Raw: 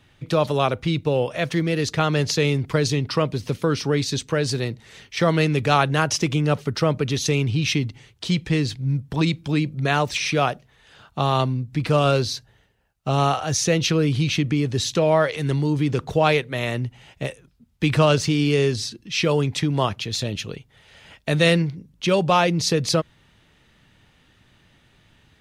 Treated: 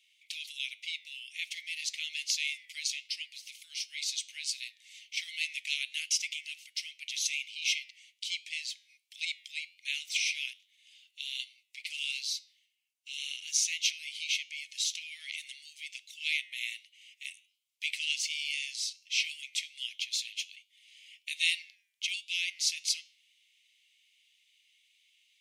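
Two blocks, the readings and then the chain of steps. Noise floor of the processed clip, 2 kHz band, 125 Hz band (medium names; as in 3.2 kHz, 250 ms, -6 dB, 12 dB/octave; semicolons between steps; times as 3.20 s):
-75 dBFS, -7.5 dB, under -40 dB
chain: rippled Chebyshev high-pass 2.1 kHz, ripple 3 dB; flange 1.3 Hz, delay 9.7 ms, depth 2.3 ms, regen -88%; trim +1.5 dB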